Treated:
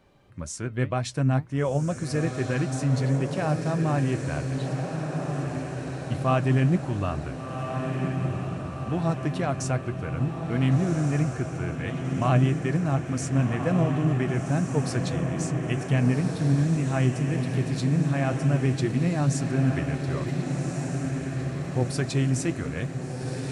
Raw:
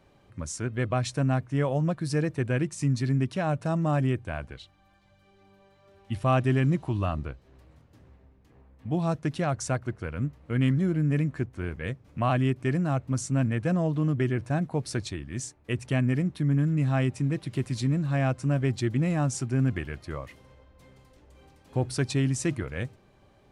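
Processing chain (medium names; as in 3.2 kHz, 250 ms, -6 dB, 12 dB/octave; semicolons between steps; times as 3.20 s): flange 1.9 Hz, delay 3.8 ms, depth 4.6 ms, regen +73%; echo that smears into a reverb 1502 ms, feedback 64%, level -5 dB; trim +4.5 dB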